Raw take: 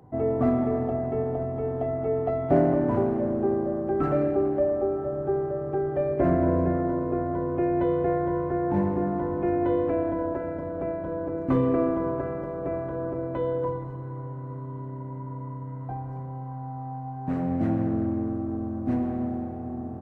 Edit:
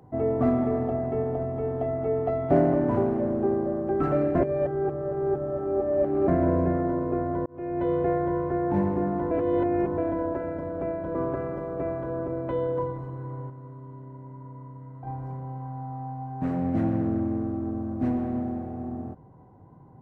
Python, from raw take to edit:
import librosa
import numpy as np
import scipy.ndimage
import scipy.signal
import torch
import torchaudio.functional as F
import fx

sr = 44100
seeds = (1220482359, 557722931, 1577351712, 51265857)

y = fx.edit(x, sr, fx.reverse_span(start_s=4.35, length_s=1.93),
    fx.fade_in_span(start_s=7.46, length_s=0.49),
    fx.reverse_span(start_s=9.31, length_s=0.67),
    fx.cut(start_s=11.15, length_s=0.86),
    fx.clip_gain(start_s=14.36, length_s=1.57, db=-6.5), tone=tone)